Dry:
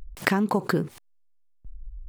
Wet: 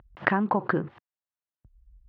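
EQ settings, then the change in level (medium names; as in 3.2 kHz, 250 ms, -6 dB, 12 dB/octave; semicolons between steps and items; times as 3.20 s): cabinet simulation 110–2500 Hz, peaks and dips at 170 Hz -7 dB, 250 Hz -7 dB, 430 Hz -8 dB, 2.3 kHz -8 dB; +2.5 dB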